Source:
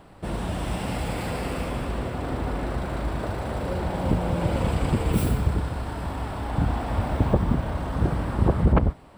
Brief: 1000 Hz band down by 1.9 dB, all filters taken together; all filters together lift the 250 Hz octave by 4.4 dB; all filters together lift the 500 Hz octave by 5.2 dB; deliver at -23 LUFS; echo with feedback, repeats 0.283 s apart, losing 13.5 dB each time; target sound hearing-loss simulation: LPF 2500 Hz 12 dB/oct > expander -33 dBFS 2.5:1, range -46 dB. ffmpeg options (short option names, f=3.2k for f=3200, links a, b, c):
-af "lowpass=2.5k,equalizer=f=250:t=o:g=4.5,equalizer=f=500:t=o:g=6.5,equalizer=f=1k:t=o:g=-5.5,aecho=1:1:283|566:0.211|0.0444,agate=range=-46dB:threshold=-33dB:ratio=2.5,volume=1dB"